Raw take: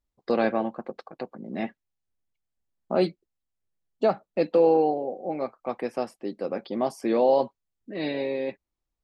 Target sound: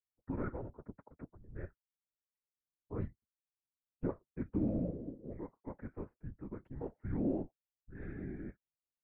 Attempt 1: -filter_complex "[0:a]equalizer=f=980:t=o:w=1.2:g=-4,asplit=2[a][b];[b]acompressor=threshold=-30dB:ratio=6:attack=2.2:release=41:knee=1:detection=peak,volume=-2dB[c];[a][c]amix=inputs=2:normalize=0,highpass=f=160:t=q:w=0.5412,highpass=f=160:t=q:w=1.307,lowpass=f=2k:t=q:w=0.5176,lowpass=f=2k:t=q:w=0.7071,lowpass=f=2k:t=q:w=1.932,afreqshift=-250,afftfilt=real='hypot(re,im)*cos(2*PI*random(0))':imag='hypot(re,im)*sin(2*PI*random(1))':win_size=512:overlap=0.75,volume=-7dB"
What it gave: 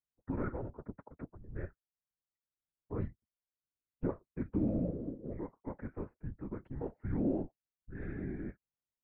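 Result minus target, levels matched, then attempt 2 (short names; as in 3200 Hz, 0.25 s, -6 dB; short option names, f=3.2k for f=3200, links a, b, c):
compressor: peak gain reduction +13.5 dB
-af "equalizer=f=980:t=o:w=1.2:g=-4,highpass=f=160:t=q:w=0.5412,highpass=f=160:t=q:w=1.307,lowpass=f=2k:t=q:w=0.5176,lowpass=f=2k:t=q:w=0.7071,lowpass=f=2k:t=q:w=1.932,afreqshift=-250,afftfilt=real='hypot(re,im)*cos(2*PI*random(0))':imag='hypot(re,im)*sin(2*PI*random(1))':win_size=512:overlap=0.75,volume=-7dB"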